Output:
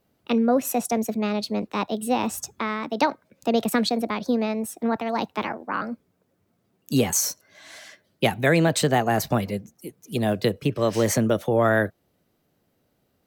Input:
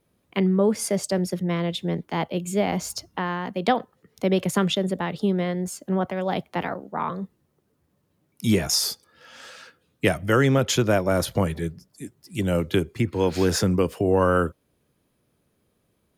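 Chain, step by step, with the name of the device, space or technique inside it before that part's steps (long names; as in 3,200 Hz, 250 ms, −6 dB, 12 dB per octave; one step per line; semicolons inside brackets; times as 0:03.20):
nightcore (speed change +22%)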